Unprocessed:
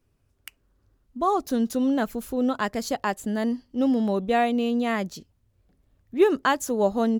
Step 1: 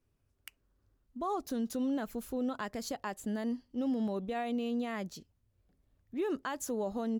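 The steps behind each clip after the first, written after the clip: peak limiter -19 dBFS, peak gain reduction 10.5 dB; trim -7.5 dB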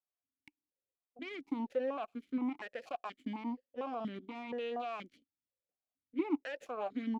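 Chebyshev shaper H 3 -13 dB, 6 -19 dB, 7 -30 dB, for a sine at -26 dBFS; stepped vowel filter 4.2 Hz; trim +9.5 dB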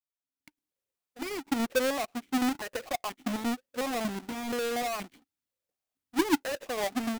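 square wave that keeps the level; level rider gain up to 11 dB; trim -7 dB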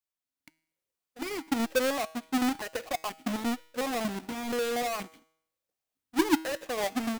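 feedback comb 160 Hz, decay 0.68 s, harmonics all, mix 50%; trim +6 dB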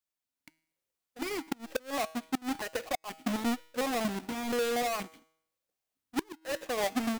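inverted gate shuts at -22 dBFS, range -28 dB

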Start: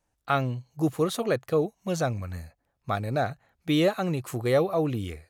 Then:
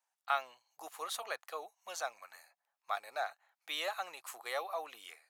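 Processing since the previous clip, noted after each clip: Chebyshev high-pass 810 Hz, order 3; trim -5 dB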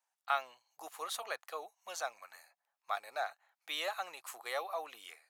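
no audible change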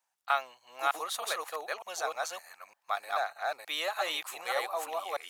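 chunks repeated in reverse 304 ms, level -0.5 dB; trim +4 dB

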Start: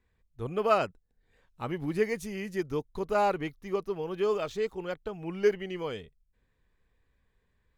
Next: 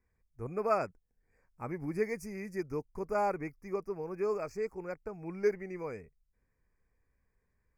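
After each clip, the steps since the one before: elliptic band-stop 2.4–4.8 kHz, stop band 40 dB; trim -4.5 dB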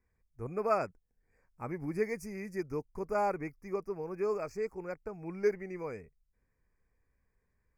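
no audible change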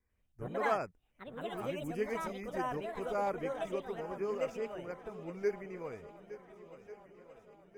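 ever faster or slower copies 93 ms, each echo +4 st, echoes 2; shuffle delay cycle 1442 ms, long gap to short 1.5:1, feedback 48%, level -15 dB; vibrato 1.8 Hz 27 cents; trim -4 dB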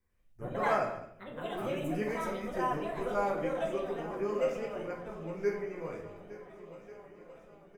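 delay 209 ms -18 dB; simulated room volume 120 m³, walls mixed, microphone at 0.87 m

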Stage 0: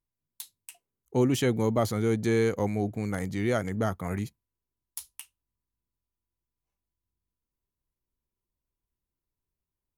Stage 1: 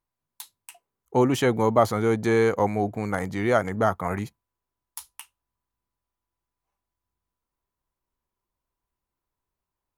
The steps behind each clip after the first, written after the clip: peaking EQ 960 Hz +11.5 dB 1.9 oct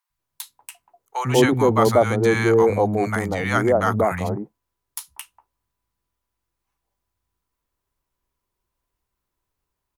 three bands offset in time highs, lows, mids 100/190 ms, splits 210/830 Hz; trim +6 dB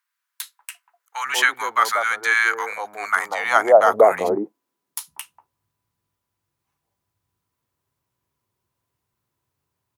high-pass sweep 1.5 kHz -> 110 Hz, 2.92–5.55 s; trim +2 dB

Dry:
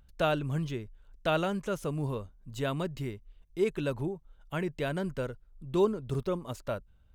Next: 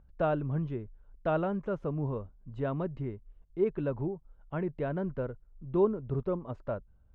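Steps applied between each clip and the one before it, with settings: low-pass 1.2 kHz 12 dB/octave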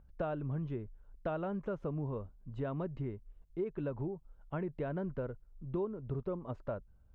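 compression 6:1, threshold -32 dBFS, peak gain reduction 11 dB; trim -1 dB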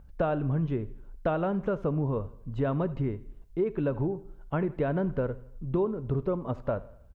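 feedback delay 80 ms, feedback 48%, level -19.5 dB; on a send at -15.5 dB: reverberation RT60 0.55 s, pre-delay 3 ms; on the sum: trim +9 dB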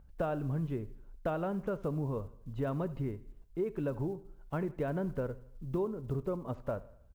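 block-companded coder 7-bit; trim -6 dB

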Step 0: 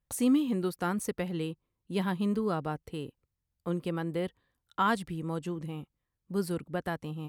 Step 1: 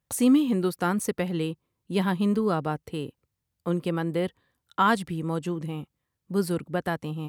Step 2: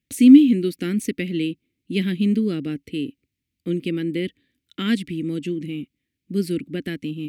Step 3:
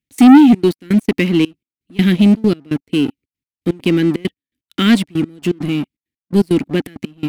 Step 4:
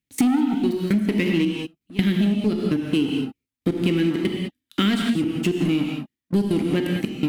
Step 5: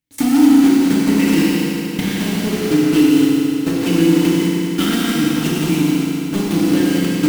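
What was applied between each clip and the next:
high-pass 76 Hz; trim +5.5 dB
FFT filter 160 Hz 0 dB, 280 Hz +13 dB, 950 Hz -27 dB, 2.2 kHz +10 dB, 5.1 kHz +2 dB, 9.2 kHz -1 dB; trim -1 dB
waveshaping leveller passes 3; trance gate "x.xxxx.x.." 166 bpm -24 dB
gated-style reverb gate 230 ms flat, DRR 2.5 dB; compression 12:1, threshold -17 dBFS, peak gain reduction 19 dB
block-companded coder 3-bit; FDN reverb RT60 3.2 s, high-frequency decay 0.95×, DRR -5 dB; trim -1.5 dB

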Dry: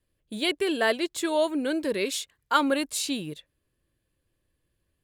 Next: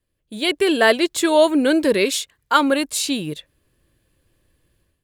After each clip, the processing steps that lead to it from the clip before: level rider gain up to 12 dB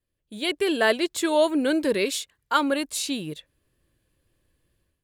wow and flutter 21 cents; trim -6 dB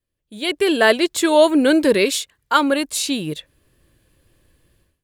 level rider gain up to 11 dB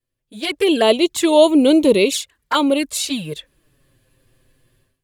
touch-sensitive flanger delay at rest 7.9 ms, full sweep at -13.5 dBFS; trim +3 dB

